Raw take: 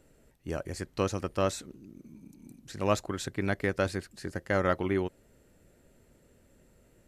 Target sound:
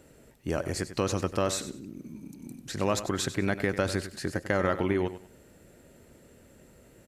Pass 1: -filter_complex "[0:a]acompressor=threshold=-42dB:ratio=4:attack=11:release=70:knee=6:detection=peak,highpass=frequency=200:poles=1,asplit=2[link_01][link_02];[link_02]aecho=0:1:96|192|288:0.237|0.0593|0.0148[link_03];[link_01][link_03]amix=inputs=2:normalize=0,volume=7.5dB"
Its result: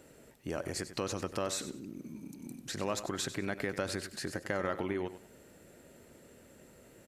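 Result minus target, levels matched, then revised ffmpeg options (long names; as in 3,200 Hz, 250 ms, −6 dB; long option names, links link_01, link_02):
downward compressor: peak gain reduction +7 dB; 125 Hz band −2.5 dB
-filter_complex "[0:a]acompressor=threshold=-33dB:ratio=4:attack=11:release=70:knee=6:detection=peak,highpass=frequency=73:poles=1,asplit=2[link_01][link_02];[link_02]aecho=0:1:96|192|288:0.237|0.0593|0.0148[link_03];[link_01][link_03]amix=inputs=2:normalize=0,volume=7.5dB"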